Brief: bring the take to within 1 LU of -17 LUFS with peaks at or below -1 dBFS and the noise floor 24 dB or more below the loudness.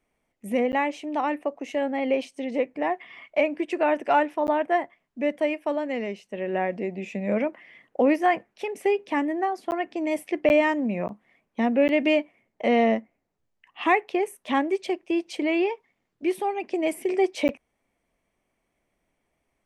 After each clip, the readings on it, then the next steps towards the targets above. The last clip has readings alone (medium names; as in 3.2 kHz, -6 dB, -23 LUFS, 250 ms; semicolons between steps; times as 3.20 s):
dropouts 7; longest dropout 9.9 ms; loudness -25.5 LUFS; peak level -8.5 dBFS; loudness target -17.0 LUFS
-> interpolate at 0.72/4.47/9.71/10.49/11.08/11.88/17.48 s, 9.9 ms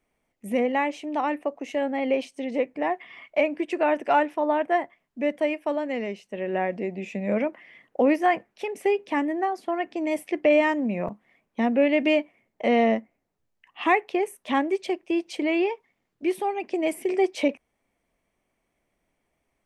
dropouts 0; loudness -25.5 LUFS; peak level -8.5 dBFS; loudness target -17.0 LUFS
-> trim +8.5 dB; peak limiter -1 dBFS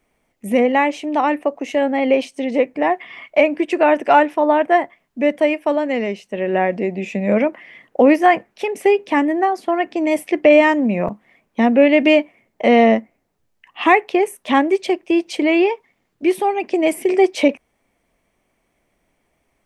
loudness -17.0 LUFS; peak level -1.0 dBFS; noise floor -69 dBFS